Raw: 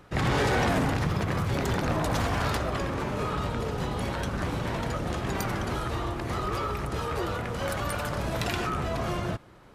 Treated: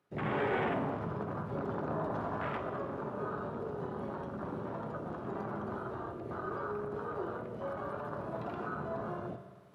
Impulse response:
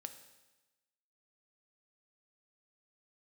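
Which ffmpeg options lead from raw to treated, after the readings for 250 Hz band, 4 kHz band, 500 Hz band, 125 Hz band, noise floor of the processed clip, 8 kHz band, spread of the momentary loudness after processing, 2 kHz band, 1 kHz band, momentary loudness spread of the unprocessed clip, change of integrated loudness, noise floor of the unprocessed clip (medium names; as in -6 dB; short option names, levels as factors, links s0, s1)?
-8.0 dB, -20.5 dB, -5.5 dB, -13.0 dB, -48 dBFS, under -30 dB, 7 LU, -10.5 dB, -7.5 dB, 6 LU, -8.5 dB, -41 dBFS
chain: -filter_complex "[0:a]acrossover=split=3800[s0][s1];[s1]acompressor=threshold=0.00158:ratio=4:attack=1:release=60[s2];[s0][s2]amix=inputs=2:normalize=0,afwtdn=0.0316,highpass=170,equalizer=f=11000:w=3:g=6.5,areverse,acompressor=mode=upward:threshold=0.00316:ratio=2.5,areverse[s3];[1:a]atrim=start_sample=2205,asetrate=33075,aresample=44100[s4];[s3][s4]afir=irnorm=-1:irlink=0,volume=0.668"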